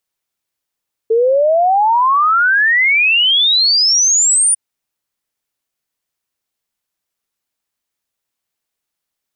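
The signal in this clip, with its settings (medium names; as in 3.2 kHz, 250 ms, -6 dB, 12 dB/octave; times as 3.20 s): log sweep 440 Hz -> 9.6 kHz 3.45 s -9 dBFS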